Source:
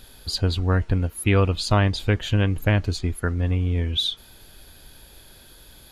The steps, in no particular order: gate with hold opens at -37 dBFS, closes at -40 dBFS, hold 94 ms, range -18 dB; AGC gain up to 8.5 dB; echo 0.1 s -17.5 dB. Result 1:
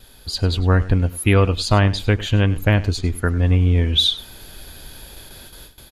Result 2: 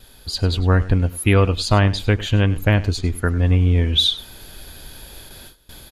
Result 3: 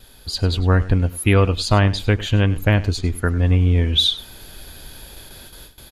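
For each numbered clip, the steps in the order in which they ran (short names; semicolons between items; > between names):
gate with hold > AGC > echo; echo > gate with hold > AGC; gate with hold > echo > AGC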